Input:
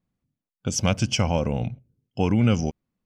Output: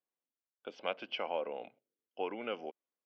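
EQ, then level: high-pass 400 Hz 24 dB/octave; four-pole ladder low-pass 4.6 kHz, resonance 45%; distance through air 480 m; +1.5 dB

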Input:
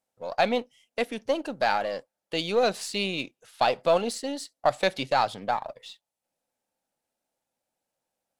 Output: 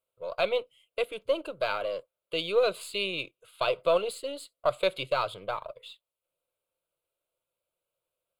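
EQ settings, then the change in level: static phaser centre 1.2 kHz, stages 8; 0.0 dB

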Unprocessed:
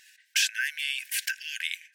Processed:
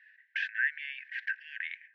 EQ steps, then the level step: band-pass filter 1.8 kHz, Q 6.7; distance through air 310 m; +7.5 dB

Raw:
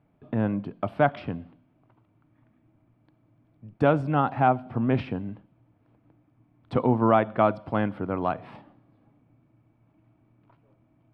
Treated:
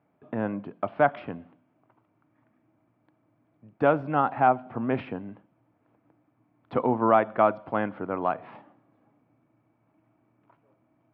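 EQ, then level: high-pass 410 Hz 6 dB/octave; low-pass 2.3 kHz 12 dB/octave; +2.0 dB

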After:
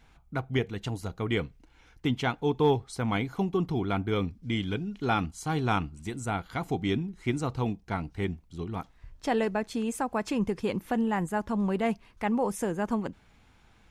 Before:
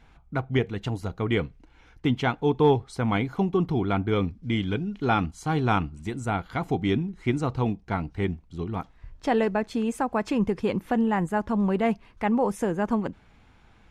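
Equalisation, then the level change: treble shelf 4.7 kHz +9.5 dB; -4.0 dB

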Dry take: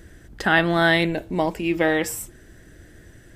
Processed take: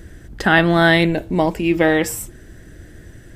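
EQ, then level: bass shelf 320 Hz +4.5 dB; +3.5 dB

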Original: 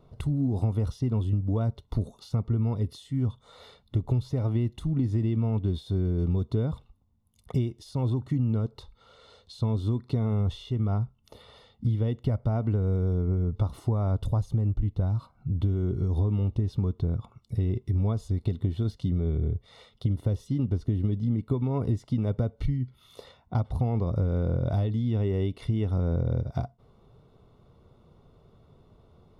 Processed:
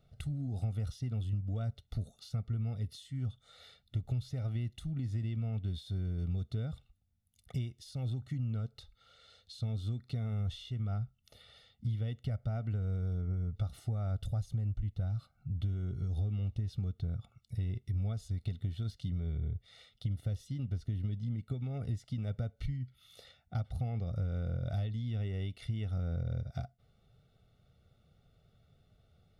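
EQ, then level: Butterworth band-stop 1 kHz, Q 2.1; bass shelf 62 Hz -8 dB; peaking EQ 350 Hz -15 dB 1.7 oct; -3.0 dB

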